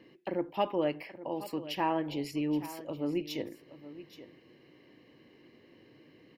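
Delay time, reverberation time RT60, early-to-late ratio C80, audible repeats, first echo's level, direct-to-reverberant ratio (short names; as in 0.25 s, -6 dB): 0.824 s, none, none, 1, -15.0 dB, none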